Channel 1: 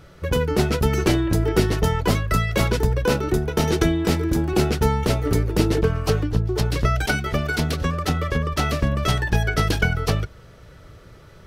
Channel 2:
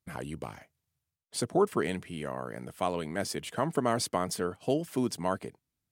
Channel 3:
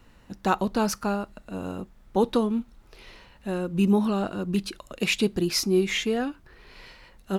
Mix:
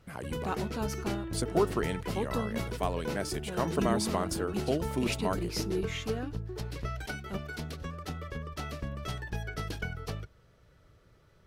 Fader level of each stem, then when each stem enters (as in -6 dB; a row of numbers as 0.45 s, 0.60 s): -16.0 dB, -2.0 dB, -11.5 dB; 0.00 s, 0.00 s, 0.00 s